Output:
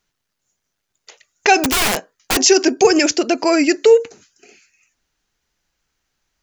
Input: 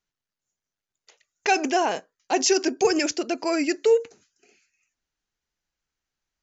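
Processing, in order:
in parallel at 0 dB: downward compressor 6 to 1, threshold −30 dBFS, peak gain reduction 15 dB
0:01.57–0:02.37: on the sum: wrap-around overflow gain 18 dB
level +6.5 dB

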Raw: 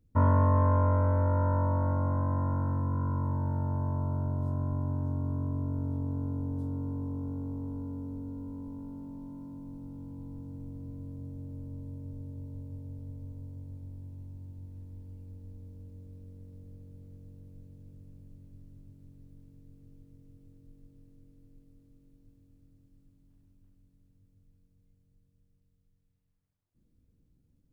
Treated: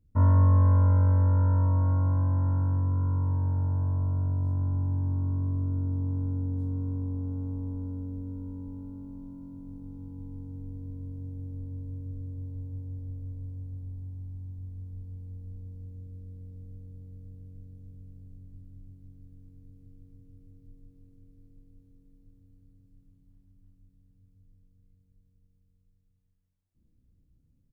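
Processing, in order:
low-shelf EQ 220 Hz +8.5 dB
double-tracking delay 32 ms −5 dB
single-tap delay 194 ms −14 dB
level −6.5 dB

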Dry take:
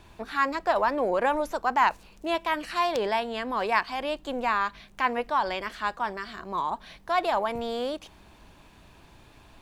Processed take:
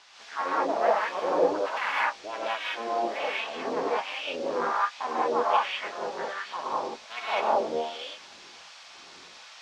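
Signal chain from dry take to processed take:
sub-harmonics by changed cycles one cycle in 3, muted
0:02.93–0:03.65: all-pass dispersion lows, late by 116 ms, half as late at 1,500 Hz
LFO wah 1.3 Hz 340–3,000 Hz, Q 2.5
noise in a band 660–5,700 Hz −57 dBFS
reverb whose tail is shaped and stops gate 230 ms rising, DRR −7.5 dB

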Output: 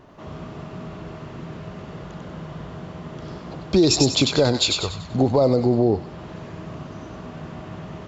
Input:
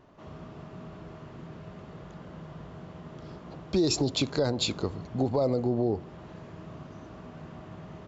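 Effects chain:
0:04.56–0:05.08: parametric band 140 Hz → 400 Hz −14.5 dB 1.3 octaves
delay with a high-pass on its return 96 ms, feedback 41%, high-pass 2,000 Hz, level −3 dB
level +8.5 dB

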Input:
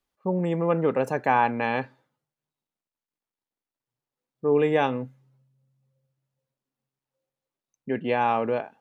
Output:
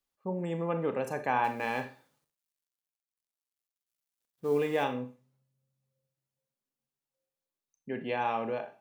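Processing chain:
0:01.44–0:04.84: mu-law and A-law mismatch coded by mu
high-shelf EQ 3,600 Hz +7.5 dB
four-comb reverb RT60 0.35 s, combs from 28 ms, DRR 8 dB
level −8.5 dB

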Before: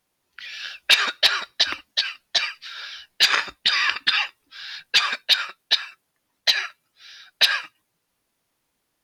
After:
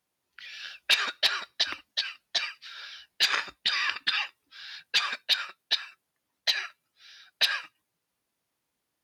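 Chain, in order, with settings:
high-pass filter 51 Hz
level −7 dB

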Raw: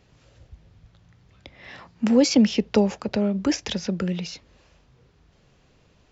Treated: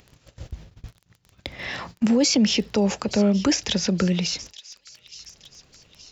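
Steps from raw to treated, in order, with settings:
noise gate −50 dBFS, range −39 dB
high-shelf EQ 4,300 Hz +7.5 dB
in parallel at −2 dB: upward compression, threshold −24 dBFS
on the sum: brickwall limiter −12 dBFS, peak gain reduction 10.5 dB
surface crackle 11 per second −34 dBFS
on a send: delay with a high-pass on its return 872 ms, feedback 54%, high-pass 3,300 Hz, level −14 dB

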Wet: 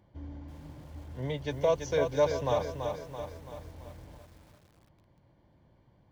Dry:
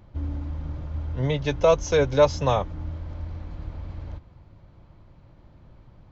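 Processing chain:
notch comb filter 1,300 Hz
feedback echo at a low word length 334 ms, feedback 55%, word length 8 bits, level −6 dB
level −8 dB

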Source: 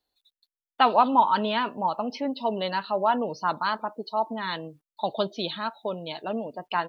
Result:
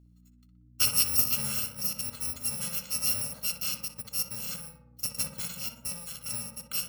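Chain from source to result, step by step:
samples in bit-reversed order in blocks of 128 samples
mains hum 60 Hz, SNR 25 dB
tape delay 60 ms, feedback 79%, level −3.5 dB, low-pass 1,400 Hz
level −5.5 dB

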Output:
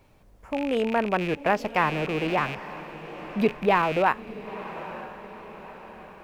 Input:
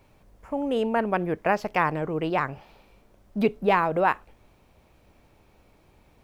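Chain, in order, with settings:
loose part that buzzes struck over −39 dBFS, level −23 dBFS
feedback delay with all-pass diffusion 924 ms, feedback 50%, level −14 dB

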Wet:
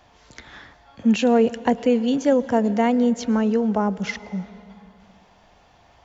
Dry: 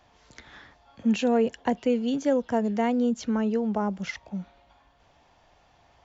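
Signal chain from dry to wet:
on a send: convolution reverb RT60 2.9 s, pre-delay 98 ms, DRR 17 dB
on the sum: level +5.5 dB

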